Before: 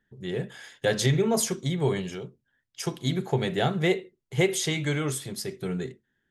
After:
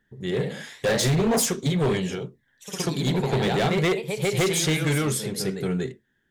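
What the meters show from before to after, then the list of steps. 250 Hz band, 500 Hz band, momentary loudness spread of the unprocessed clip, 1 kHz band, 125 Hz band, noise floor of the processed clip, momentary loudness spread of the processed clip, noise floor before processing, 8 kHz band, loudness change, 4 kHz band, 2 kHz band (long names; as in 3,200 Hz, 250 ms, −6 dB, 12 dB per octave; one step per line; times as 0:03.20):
+3.5 dB, +3.0 dB, 11 LU, +4.5 dB, +3.0 dB, −71 dBFS, 9 LU, −78 dBFS, +4.0 dB, +3.5 dB, +3.5 dB, +3.0 dB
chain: delay with pitch and tempo change per echo 89 ms, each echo +1 semitone, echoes 3, each echo −6 dB
gain into a clipping stage and back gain 23 dB
level +4.5 dB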